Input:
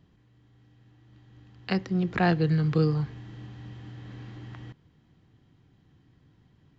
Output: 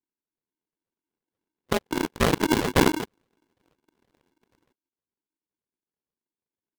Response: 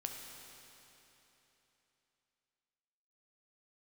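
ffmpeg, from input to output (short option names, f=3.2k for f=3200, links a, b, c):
-af "afftfilt=real='real(if(lt(b,1008),b+24*(1-2*mod(floor(b/24),2)),b),0)':imag='imag(if(lt(b,1008),b+24*(1-2*mod(floor(b/24),2)),b),0)':win_size=2048:overlap=0.75,highpass=f=48:p=1,bandreject=f=60:t=h:w=6,bandreject=f=120:t=h:w=6,bandreject=f=180:t=h:w=6,aresample=8000,acrusher=samples=25:mix=1:aa=0.000001:lfo=1:lforange=25:lforate=2.1,aresample=44100,aeval=exprs='0.266*(cos(1*acos(clip(val(0)/0.266,-1,1)))-cos(1*PI/2))+0.0075*(cos(2*acos(clip(val(0)/0.266,-1,1)))-cos(2*PI/2))+0.0376*(cos(7*acos(clip(val(0)/0.266,-1,1)))-cos(7*PI/2))':c=same,aeval=exprs='val(0)*sgn(sin(2*PI*310*n/s))':c=same,volume=2dB"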